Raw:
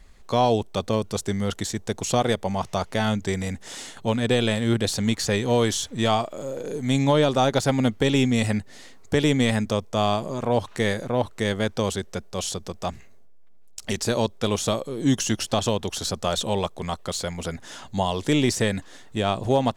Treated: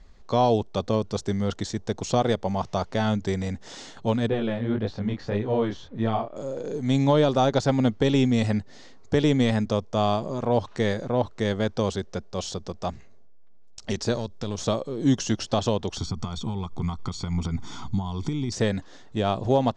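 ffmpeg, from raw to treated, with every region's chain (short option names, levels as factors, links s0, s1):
-filter_complex "[0:a]asettb=1/sr,asplit=3[s0][s1][s2];[s0]atrim=end=4.294[s3];[s1]atrim=start=4.29:end=6.36,asetpts=PTS-STARTPTS,afade=t=in:d=0.004:c=qsin,afade=t=out:st=2.066:d=0.004:c=qsin,lowpass=2300,flanger=delay=18:depth=7.1:speed=1.7[s4];[s2]atrim=start=6.356[s5];[s3][s4]acrossfade=d=0.004:c1=hsin:c2=qsin[s6];[s6][s5]acrossfade=d=0.004:c1=qsin:c2=hsin,asettb=1/sr,asplit=3[s7][s8][s9];[s7]atrim=end=14.144[s10];[s8]atrim=start=14.14:end=14.64,asetpts=PTS-STARTPTS,afade=t=in:d=0.004:c=qsin,afade=t=out:st=0.496:d=0.004:c=qsin,bass=f=250:g=7,treble=f=4000:g=7,acompressor=threshold=0.0794:ratio=6:attack=3.2:release=140:knee=1:detection=peak,aeval=exprs='(tanh(11.2*val(0)+0.6)-tanh(0.6))/11.2':c=same[s11];[s9]atrim=start=14.636[s12];[s10][s11]acrossfade=d=0.004:c1=hsin:c2=qsin[s13];[s13][s12]acrossfade=d=0.004:c1=qsin:c2=hsin,asettb=1/sr,asplit=3[s14][s15][s16];[s14]atrim=end=15.974[s17];[s15]atrim=start=15.97:end=18.52,asetpts=PTS-STARTPTS,afade=t=in:d=0.004:c=qsin,afade=t=out:st=2.546:d=0.004:c=qsin,acompressor=threshold=0.0282:ratio=10:attack=3.2:release=140:knee=1:detection=peak,lowshelf=f=330:g=8,aecho=1:1:0.9:0.88,atrim=end_sample=112455[s18];[s16]atrim=start=18.516[s19];[s17][s18]acrossfade=d=0.004:c1=hsin:c2=qsin[s20];[s20][s19]acrossfade=d=0.004:c1=qsin:c2=hsin,lowpass=f=6000:w=0.5412,lowpass=f=6000:w=1.3066,equalizer=f=2400:w=0.91:g=-6"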